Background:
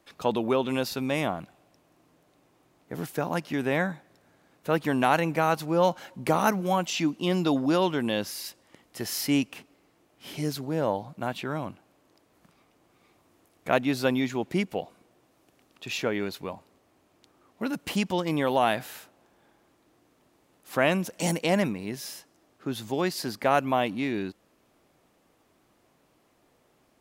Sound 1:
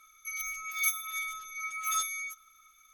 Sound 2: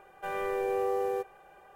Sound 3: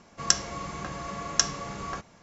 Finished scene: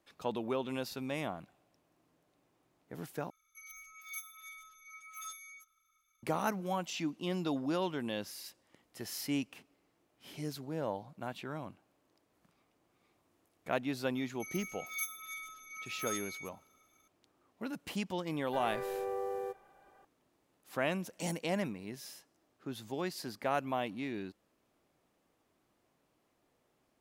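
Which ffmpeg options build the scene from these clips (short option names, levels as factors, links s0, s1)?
-filter_complex "[1:a]asplit=2[s0][s1];[0:a]volume=0.316[s2];[2:a]equalizer=f=2600:t=o:w=0.4:g=-5[s3];[s2]asplit=2[s4][s5];[s4]atrim=end=3.304[s6];[s0]atrim=end=2.93,asetpts=PTS-STARTPTS,volume=0.178[s7];[s5]atrim=start=6.226[s8];[s1]atrim=end=2.93,asetpts=PTS-STARTPTS,volume=0.355,afade=t=in:d=0.004:c=hsin,afade=t=out:st=2.926:d=0.004:c=hsin,adelay=14150[s9];[s3]atrim=end=1.75,asetpts=PTS-STARTPTS,volume=0.422,afade=t=in:d=0.004:c=hsin,afade=t=out:st=1.746:d=0.004:c=hsin,adelay=18300[s10];[s6][s7]acrossfade=d=0.004:c1=hsin:c2=hsin[s11];[s11][s8]acrossfade=d=0.004:c1=hsin:c2=hsin[s12];[s12][s9][s10]amix=inputs=3:normalize=0"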